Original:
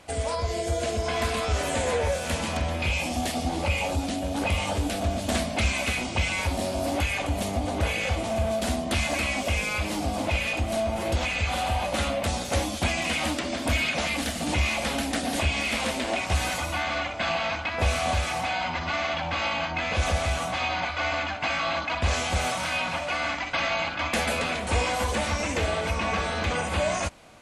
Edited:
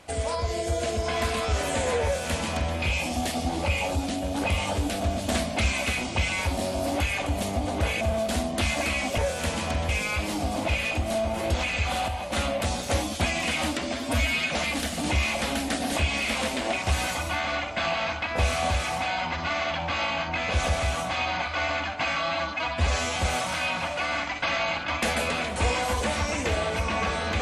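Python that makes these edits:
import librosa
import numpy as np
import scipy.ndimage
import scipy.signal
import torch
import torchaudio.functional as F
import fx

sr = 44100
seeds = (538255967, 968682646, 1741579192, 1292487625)

y = fx.edit(x, sr, fx.duplicate(start_s=2.04, length_s=0.71, to_s=9.51),
    fx.cut(start_s=8.01, length_s=0.33),
    fx.clip_gain(start_s=11.7, length_s=0.25, db=-5.0),
    fx.stretch_span(start_s=13.55, length_s=0.38, factor=1.5),
    fx.stretch_span(start_s=21.63, length_s=0.64, factor=1.5), tone=tone)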